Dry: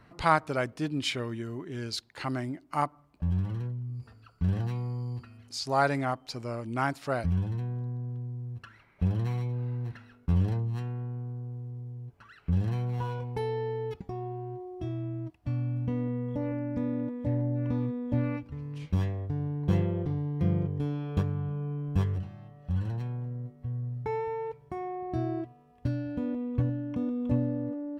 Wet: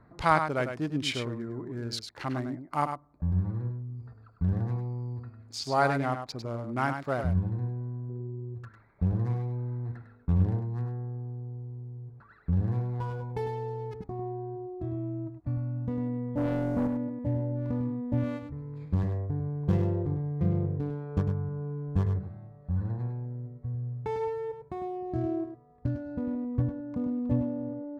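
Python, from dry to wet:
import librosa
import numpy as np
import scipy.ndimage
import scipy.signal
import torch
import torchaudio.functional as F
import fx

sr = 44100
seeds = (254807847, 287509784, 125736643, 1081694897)

p1 = fx.wiener(x, sr, points=15)
p2 = fx.peak_eq(p1, sr, hz=380.0, db=12.5, octaves=0.45, at=(8.09, 8.55))
p3 = fx.leveller(p2, sr, passes=2, at=(16.37, 16.87))
y = p3 + fx.echo_single(p3, sr, ms=101, db=-7.5, dry=0)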